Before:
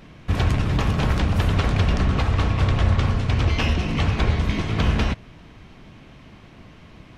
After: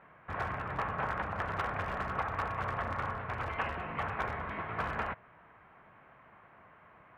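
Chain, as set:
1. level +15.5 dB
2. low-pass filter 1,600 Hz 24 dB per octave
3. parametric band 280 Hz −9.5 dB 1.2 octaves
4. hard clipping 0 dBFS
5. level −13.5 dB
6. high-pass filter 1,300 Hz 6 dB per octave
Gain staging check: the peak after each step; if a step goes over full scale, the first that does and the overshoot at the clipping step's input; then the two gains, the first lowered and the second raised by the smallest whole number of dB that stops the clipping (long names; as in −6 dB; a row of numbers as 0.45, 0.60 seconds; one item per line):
+7.5, +7.0, +6.0, 0.0, −13.5, −19.5 dBFS
step 1, 6.0 dB
step 1 +9.5 dB, step 5 −7.5 dB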